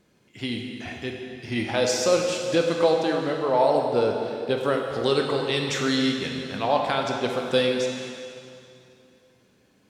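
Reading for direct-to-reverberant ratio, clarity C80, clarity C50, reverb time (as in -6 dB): 1.0 dB, 3.5 dB, 2.5 dB, 2.6 s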